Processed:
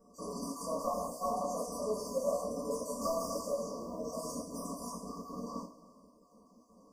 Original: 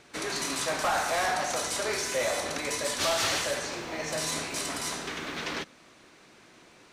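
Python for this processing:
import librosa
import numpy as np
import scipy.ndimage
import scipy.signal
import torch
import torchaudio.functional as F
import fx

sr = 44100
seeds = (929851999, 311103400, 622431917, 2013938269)

y = fx.spec_dropout(x, sr, seeds[0], share_pct=26)
y = fx.brickwall_bandstop(y, sr, low_hz=1200.0, high_hz=4500.0)
y = fx.peak_eq(y, sr, hz=7300.0, db=-11.5, octaves=2.3)
y = fx.fixed_phaser(y, sr, hz=550.0, stages=8)
y = fx.rev_double_slope(y, sr, seeds[1], early_s=0.3, late_s=1.8, knee_db=-19, drr_db=-7.0)
y = y * librosa.db_to_amplitude(-7.0)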